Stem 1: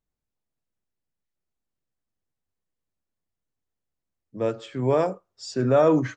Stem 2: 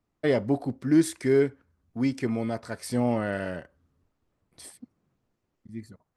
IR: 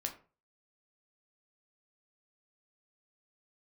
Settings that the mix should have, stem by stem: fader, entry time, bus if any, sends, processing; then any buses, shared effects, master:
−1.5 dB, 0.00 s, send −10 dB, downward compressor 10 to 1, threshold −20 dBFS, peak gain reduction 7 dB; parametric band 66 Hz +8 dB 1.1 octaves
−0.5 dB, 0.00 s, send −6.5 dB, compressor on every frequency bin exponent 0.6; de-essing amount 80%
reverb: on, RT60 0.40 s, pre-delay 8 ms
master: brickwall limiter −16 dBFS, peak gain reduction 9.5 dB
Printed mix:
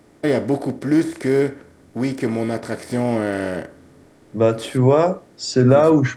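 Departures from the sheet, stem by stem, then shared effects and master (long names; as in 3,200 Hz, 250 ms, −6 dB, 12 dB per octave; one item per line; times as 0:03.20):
stem 1 −1.5 dB → +8.5 dB
master: missing brickwall limiter −16 dBFS, peak gain reduction 9.5 dB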